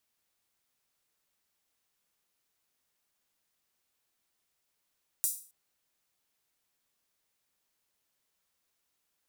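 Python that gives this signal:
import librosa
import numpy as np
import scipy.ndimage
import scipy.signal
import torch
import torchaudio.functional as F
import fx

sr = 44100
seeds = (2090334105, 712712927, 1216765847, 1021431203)

y = fx.drum_hat_open(sr, length_s=0.27, from_hz=8300.0, decay_s=0.41)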